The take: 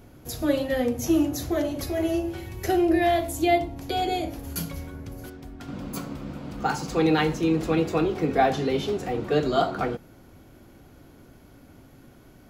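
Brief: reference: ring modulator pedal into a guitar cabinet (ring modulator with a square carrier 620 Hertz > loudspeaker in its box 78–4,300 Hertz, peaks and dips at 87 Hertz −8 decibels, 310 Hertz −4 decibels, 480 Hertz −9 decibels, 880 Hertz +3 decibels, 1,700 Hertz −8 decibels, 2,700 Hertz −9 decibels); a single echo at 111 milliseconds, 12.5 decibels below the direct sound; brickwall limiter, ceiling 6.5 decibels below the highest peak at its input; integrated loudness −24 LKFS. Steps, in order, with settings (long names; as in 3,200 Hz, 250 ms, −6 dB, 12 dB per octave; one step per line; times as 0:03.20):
brickwall limiter −15.5 dBFS
single-tap delay 111 ms −12.5 dB
ring modulator with a square carrier 620 Hz
loudspeaker in its box 78–4,300 Hz, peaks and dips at 87 Hz −8 dB, 310 Hz −4 dB, 480 Hz −9 dB, 880 Hz +3 dB, 1,700 Hz −8 dB, 2,700 Hz −9 dB
level +4 dB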